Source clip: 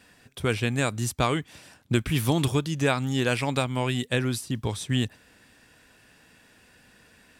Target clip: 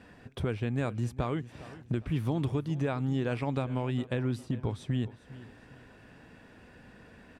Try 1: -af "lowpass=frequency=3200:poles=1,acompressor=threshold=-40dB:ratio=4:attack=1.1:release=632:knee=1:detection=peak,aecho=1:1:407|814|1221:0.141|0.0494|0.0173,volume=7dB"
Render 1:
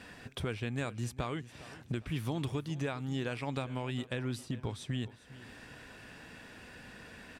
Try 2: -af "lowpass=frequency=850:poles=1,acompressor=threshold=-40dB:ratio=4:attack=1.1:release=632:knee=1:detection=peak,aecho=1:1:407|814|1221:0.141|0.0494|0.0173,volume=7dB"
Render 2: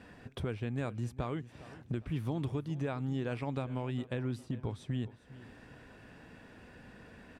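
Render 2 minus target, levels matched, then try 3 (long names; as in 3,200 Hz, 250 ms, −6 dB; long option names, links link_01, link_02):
downward compressor: peak gain reduction +5 dB
-af "lowpass=frequency=850:poles=1,acompressor=threshold=-33.5dB:ratio=4:attack=1.1:release=632:knee=1:detection=peak,aecho=1:1:407|814|1221:0.141|0.0494|0.0173,volume=7dB"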